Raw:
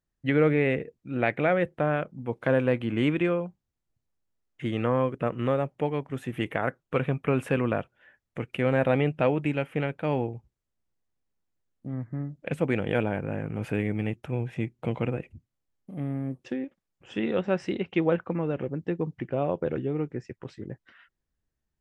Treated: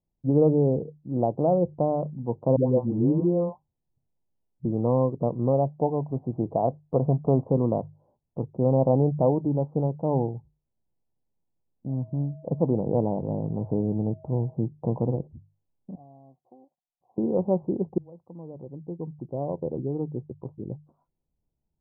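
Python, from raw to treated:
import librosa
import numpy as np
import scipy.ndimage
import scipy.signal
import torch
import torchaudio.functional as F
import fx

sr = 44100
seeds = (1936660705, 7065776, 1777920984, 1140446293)

y = fx.dispersion(x, sr, late='highs', ms=135.0, hz=600.0, at=(2.56, 4.65))
y = fx.peak_eq(y, sr, hz=680.0, db=7.0, octaves=0.31, at=(5.53, 7.44))
y = fx.dmg_tone(y, sr, hz=640.0, level_db=-53.0, at=(11.88, 14.53), fade=0.02)
y = fx.formant_cascade(y, sr, vowel='a', at=(15.95, 17.18))
y = fx.edit(y, sr, fx.fade_in_span(start_s=17.98, length_s=2.71), tone=tone)
y = scipy.signal.sosfilt(scipy.signal.butter(12, 990.0, 'lowpass', fs=sr, output='sos'), y)
y = fx.peak_eq(y, sr, hz=150.0, db=5.0, octaves=0.55)
y = fx.hum_notches(y, sr, base_hz=50, count=3)
y = y * 10.0 ** (2.0 / 20.0)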